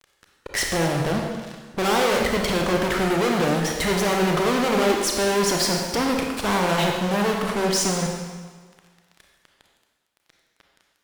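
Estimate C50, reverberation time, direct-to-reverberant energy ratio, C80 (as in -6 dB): 2.0 dB, 1.5 s, 0.5 dB, 3.5 dB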